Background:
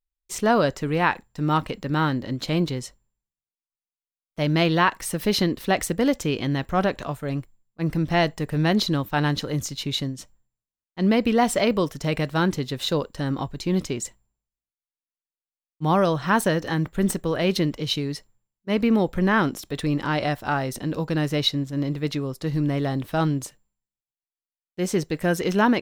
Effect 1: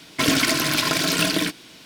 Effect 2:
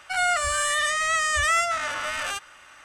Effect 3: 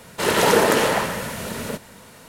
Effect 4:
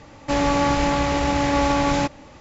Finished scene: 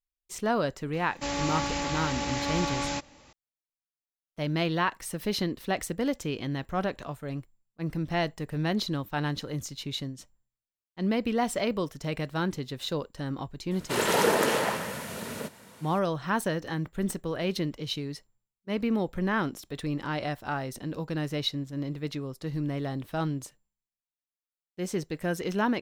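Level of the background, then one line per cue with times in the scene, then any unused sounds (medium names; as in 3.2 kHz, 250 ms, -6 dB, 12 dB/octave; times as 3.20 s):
background -7.5 dB
0.93 s: add 4 -12.5 dB + treble shelf 2.5 kHz +11.5 dB
13.71 s: add 3 -7 dB + high-pass 99 Hz
not used: 1, 2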